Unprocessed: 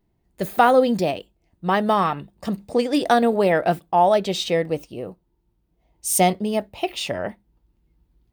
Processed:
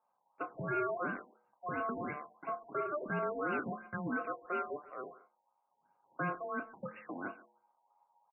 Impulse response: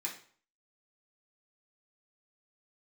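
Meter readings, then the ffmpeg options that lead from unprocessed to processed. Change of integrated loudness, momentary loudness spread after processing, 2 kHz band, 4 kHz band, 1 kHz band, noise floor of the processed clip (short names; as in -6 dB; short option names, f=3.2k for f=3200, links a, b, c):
-18.0 dB, 12 LU, -11.0 dB, under -35 dB, -18.0 dB, -80 dBFS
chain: -filter_complex "[0:a]deesser=0.9,bandreject=f=134.5:t=h:w=4,bandreject=f=269:t=h:w=4,bandreject=f=403.5:t=h:w=4,bandreject=f=538:t=h:w=4,bandreject=f=672.5:t=h:w=4,bandreject=f=807:t=h:w=4,bandreject=f=941.5:t=h:w=4,bandreject=f=1.076k:t=h:w=4,bandreject=f=1.2105k:t=h:w=4,bandreject=f=1.345k:t=h:w=4,bandreject=f=1.4795k:t=h:w=4,aresample=16000,asoftclip=type=tanh:threshold=-19.5dB,aresample=44100,asuperstop=centerf=920:order=8:qfactor=2.7,aeval=exprs='val(0)*sin(2*PI*890*n/s)':c=same,asplit=2[a][b];[b]adelay=29,volume=-10dB[c];[a][c]amix=inputs=2:normalize=0,asplit=2[d][e];[e]adelay=140,highpass=300,lowpass=3.4k,asoftclip=type=hard:threshold=-25dB,volume=-17dB[f];[d][f]amix=inputs=2:normalize=0,afftfilt=real='re*lt(b*sr/1024,960*pow(2900/960,0.5+0.5*sin(2*PI*2.9*pts/sr)))':imag='im*lt(b*sr/1024,960*pow(2900/960,0.5+0.5*sin(2*PI*2.9*pts/sr)))':win_size=1024:overlap=0.75,volume=-8.5dB"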